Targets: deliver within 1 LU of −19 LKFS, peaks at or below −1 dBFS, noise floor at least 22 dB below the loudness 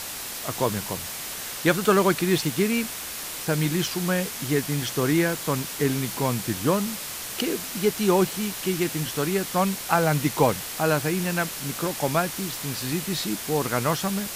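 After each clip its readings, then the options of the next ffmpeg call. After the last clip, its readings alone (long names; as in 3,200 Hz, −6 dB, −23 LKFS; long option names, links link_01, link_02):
background noise floor −35 dBFS; target noise floor −47 dBFS; integrated loudness −25.0 LKFS; sample peak −5.0 dBFS; target loudness −19.0 LKFS
→ -af "afftdn=noise_reduction=12:noise_floor=-35"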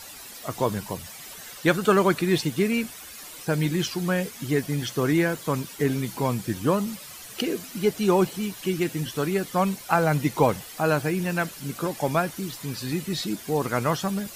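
background noise floor −42 dBFS; target noise floor −48 dBFS
→ -af "afftdn=noise_reduction=6:noise_floor=-42"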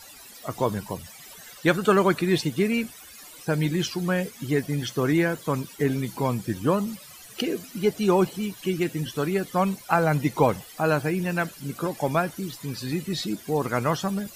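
background noise floor −46 dBFS; target noise floor −48 dBFS
→ -af "afftdn=noise_reduction=6:noise_floor=-46"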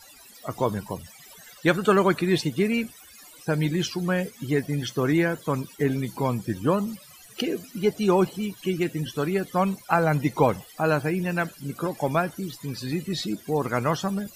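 background noise floor −49 dBFS; integrated loudness −25.5 LKFS; sample peak −6.0 dBFS; target loudness −19.0 LKFS
→ -af "volume=6.5dB,alimiter=limit=-1dB:level=0:latency=1"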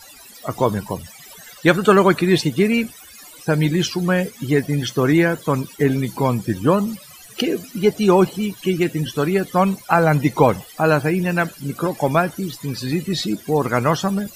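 integrated loudness −19.5 LKFS; sample peak −1.0 dBFS; background noise floor −43 dBFS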